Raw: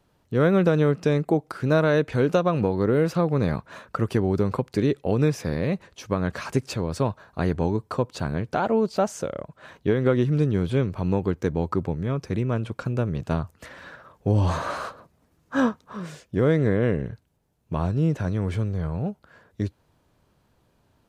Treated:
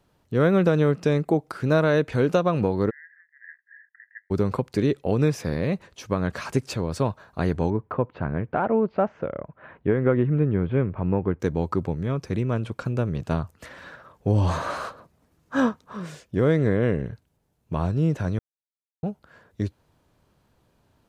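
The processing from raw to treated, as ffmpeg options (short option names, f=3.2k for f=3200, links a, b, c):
-filter_complex "[0:a]asplit=3[a][b][c];[a]afade=t=out:st=2.89:d=0.02[d];[b]asuperpass=centerf=1800:order=8:qfactor=5.3,afade=t=in:st=2.89:d=0.02,afade=t=out:st=4.3:d=0.02[e];[c]afade=t=in:st=4.3:d=0.02[f];[d][e][f]amix=inputs=3:normalize=0,asettb=1/sr,asplit=3[g][h][i];[g]atrim=end=7.704[j];[h]atrim=start=7.7:end=11.4,asetpts=PTS-STARTPTS,afade=t=in:d=0.004:c=qsin,afade=t=out:st=3.696:d=0.004:c=qsin,lowpass=f=2.3k:w=0.5412,lowpass=f=2.3k:w=1.3066[k];[i]atrim=start=11.396[l];[j][k]acrossfade=d=0.004:c1=hsin:c2=qsin[m];[m][l]acrossfade=d=0.004:c1=qsin:c2=hsin,asplit=3[n][o][p];[n]atrim=end=18.39,asetpts=PTS-STARTPTS,afade=t=out:st=18.386:d=0.004:c=hsin[q];[o]atrim=start=18.39:end=19.03,asetpts=PTS-STARTPTS,volume=0[r];[p]atrim=start=19.03,asetpts=PTS-STARTPTS,afade=t=in:d=0.004:c=hsin[s];[q][r][s]concat=n=3:v=0:a=1"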